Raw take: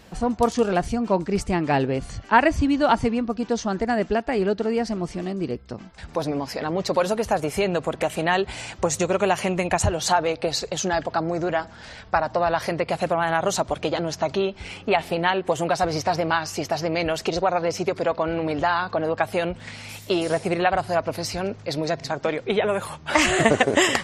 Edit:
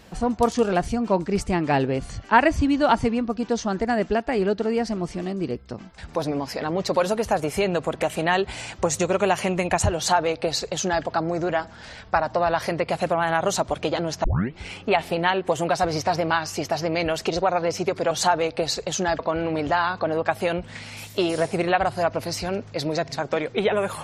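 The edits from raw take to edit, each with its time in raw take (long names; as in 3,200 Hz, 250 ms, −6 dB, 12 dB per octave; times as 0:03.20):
0:09.96–0:11.04: duplicate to 0:18.11
0:14.24: tape start 0.35 s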